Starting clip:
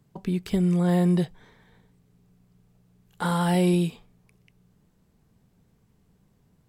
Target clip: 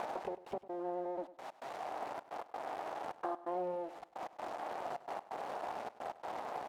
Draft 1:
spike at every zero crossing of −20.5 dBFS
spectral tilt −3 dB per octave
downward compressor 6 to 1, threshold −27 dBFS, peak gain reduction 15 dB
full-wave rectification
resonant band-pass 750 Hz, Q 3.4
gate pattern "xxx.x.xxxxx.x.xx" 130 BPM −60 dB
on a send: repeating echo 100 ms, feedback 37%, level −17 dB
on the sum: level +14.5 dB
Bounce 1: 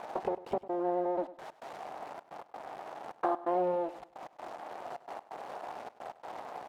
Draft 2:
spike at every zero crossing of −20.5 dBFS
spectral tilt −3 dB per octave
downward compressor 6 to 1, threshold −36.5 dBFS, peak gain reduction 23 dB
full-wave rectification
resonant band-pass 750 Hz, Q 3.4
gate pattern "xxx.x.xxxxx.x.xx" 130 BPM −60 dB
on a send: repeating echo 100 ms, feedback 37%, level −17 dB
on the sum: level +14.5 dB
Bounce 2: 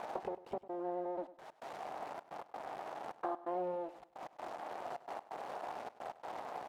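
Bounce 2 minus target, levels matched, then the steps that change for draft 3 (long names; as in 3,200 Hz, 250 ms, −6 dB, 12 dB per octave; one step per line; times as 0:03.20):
spike at every zero crossing: distortion −6 dB
change: spike at every zero crossing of −14 dBFS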